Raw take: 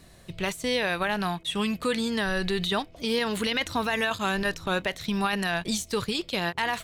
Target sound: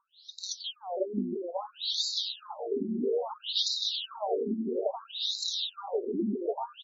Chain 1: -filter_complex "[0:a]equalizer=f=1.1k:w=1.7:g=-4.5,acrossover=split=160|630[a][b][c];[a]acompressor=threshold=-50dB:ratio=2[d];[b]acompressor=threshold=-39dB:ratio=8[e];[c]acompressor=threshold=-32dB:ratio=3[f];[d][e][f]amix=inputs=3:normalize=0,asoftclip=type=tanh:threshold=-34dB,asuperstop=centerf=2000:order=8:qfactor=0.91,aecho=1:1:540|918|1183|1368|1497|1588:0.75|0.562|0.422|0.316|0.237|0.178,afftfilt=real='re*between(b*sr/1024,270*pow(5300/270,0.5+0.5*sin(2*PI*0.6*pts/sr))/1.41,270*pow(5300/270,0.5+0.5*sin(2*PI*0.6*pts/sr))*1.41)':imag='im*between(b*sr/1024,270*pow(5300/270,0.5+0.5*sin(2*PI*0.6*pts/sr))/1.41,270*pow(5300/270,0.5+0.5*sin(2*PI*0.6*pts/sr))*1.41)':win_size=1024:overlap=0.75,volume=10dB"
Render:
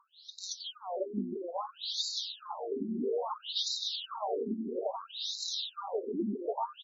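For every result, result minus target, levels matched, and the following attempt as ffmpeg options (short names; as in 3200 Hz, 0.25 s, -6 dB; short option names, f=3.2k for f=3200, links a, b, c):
soft clip: distortion +13 dB; 1000 Hz band +4.0 dB
-filter_complex "[0:a]equalizer=f=1.1k:w=1.7:g=-4.5,acrossover=split=160|630[a][b][c];[a]acompressor=threshold=-50dB:ratio=2[d];[b]acompressor=threshold=-39dB:ratio=8[e];[c]acompressor=threshold=-32dB:ratio=3[f];[d][e][f]amix=inputs=3:normalize=0,asoftclip=type=tanh:threshold=-22.5dB,asuperstop=centerf=2000:order=8:qfactor=0.91,aecho=1:1:540|918|1183|1368|1497|1588:0.75|0.562|0.422|0.316|0.237|0.178,afftfilt=real='re*between(b*sr/1024,270*pow(5300/270,0.5+0.5*sin(2*PI*0.6*pts/sr))/1.41,270*pow(5300/270,0.5+0.5*sin(2*PI*0.6*pts/sr))*1.41)':imag='im*between(b*sr/1024,270*pow(5300/270,0.5+0.5*sin(2*PI*0.6*pts/sr))/1.41,270*pow(5300/270,0.5+0.5*sin(2*PI*0.6*pts/sr))*1.41)':win_size=1024:overlap=0.75,volume=10dB"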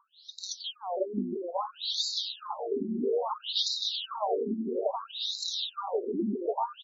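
1000 Hz band +4.5 dB
-filter_complex "[0:a]equalizer=f=1.1k:w=1.7:g=-16,acrossover=split=160|630[a][b][c];[a]acompressor=threshold=-50dB:ratio=2[d];[b]acompressor=threshold=-39dB:ratio=8[e];[c]acompressor=threshold=-32dB:ratio=3[f];[d][e][f]amix=inputs=3:normalize=0,asoftclip=type=tanh:threshold=-22.5dB,asuperstop=centerf=2000:order=8:qfactor=0.91,aecho=1:1:540|918|1183|1368|1497|1588:0.75|0.562|0.422|0.316|0.237|0.178,afftfilt=real='re*between(b*sr/1024,270*pow(5300/270,0.5+0.5*sin(2*PI*0.6*pts/sr))/1.41,270*pow(5300/270,0.5+0.5*sin(2*PI*0.6*pts/sr))*1.41)':imag='im*between(b*sr/1024,270*pow(5300/270,0.5+0.5*sin(2*PI*0.6*pts/sr))/1.41,270*pow(5300/270,0.5+0.5*sin(2*PI*0.6*pts/sr))*1.41)':win_size=1024:overlap=0.75,volume=10dB"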